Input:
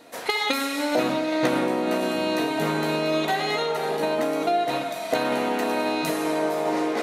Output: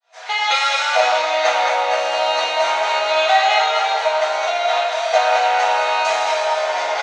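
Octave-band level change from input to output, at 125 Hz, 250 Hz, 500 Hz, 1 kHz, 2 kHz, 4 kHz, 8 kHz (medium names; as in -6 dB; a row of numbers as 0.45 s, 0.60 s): under -30 dB, under -20 dB, +5.0 dB, +11.0 dB, +9.5 dB, +9.5 dB, +7.0 dB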